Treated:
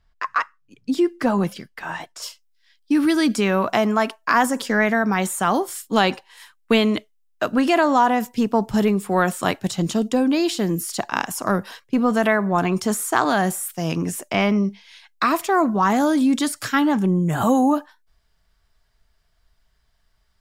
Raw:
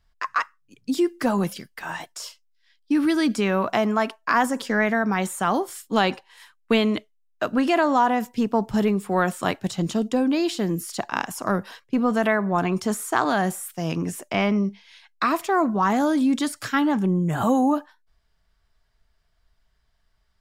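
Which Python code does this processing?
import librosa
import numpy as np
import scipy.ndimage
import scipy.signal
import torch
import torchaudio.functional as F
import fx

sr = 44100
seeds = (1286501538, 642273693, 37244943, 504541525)

y = fx.high_shelf(x, sr, hz=5600.0, db=fx.steps((0.0, -9.0), (2.21, 4.5)))
y = y * 10.0 ** (2.5 / 20.0)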